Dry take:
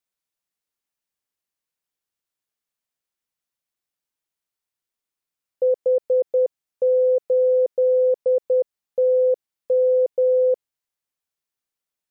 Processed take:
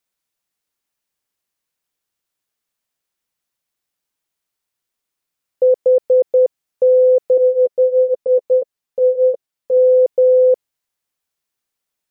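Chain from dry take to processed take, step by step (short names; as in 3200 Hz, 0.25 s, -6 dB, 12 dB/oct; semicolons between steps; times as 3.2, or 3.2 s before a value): 7.37–9.77 flange 1.4 Hz, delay 6.9 ms, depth 4 ms, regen -3%; gain +6.5 dB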